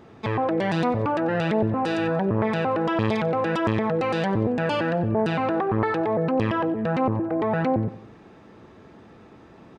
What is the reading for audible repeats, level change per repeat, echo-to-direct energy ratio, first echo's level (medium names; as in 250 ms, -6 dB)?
3, -5.0 dB, -16.5 dB, -18.0 dB